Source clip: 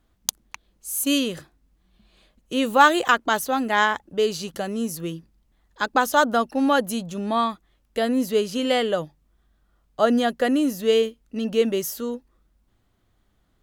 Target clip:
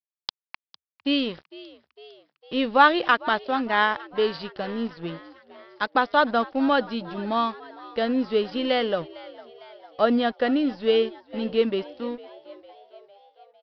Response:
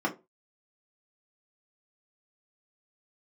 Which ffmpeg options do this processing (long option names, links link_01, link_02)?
-filter_complex "[0:a]aresample=11025,aeval=exprs='sgn(val(0))*max(abs(val(0))-0.00944,0)':channel_layout=same,aresample=44100,asplit=6[link_01][link_02][link_03][link_04][link_05][link_06];[link_02]adelay=454,afreqshift=70,volume=-19.5dB[link_07];[link_03]adelay=908,afreqshift=140,volume=-23.8dB[link_08];[link_04]adelay=1362,afreqshift=210,volume=-28.1dB[link_09];[link_05]adelay=1816,afreqshift=280,volume=-32.4dB[link_10];[link_06]adelay=2270,afreqshift=350,volume=-36.7dB[link_11];[link_01][link_07][link_08][link_09][link_10][link_11]amix=inputs=6:normalize=0,volume=-1dB"